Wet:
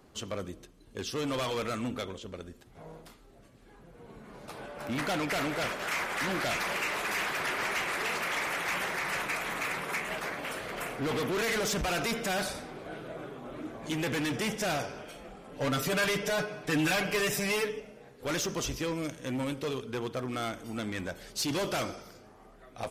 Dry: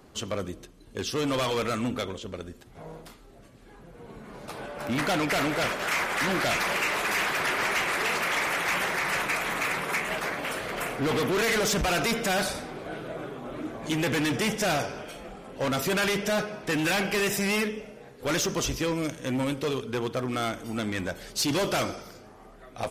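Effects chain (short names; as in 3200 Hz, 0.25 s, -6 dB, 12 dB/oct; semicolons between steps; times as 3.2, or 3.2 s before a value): 15.51–17.8 comb 6.8 ms, depth 85%; gain -5 dB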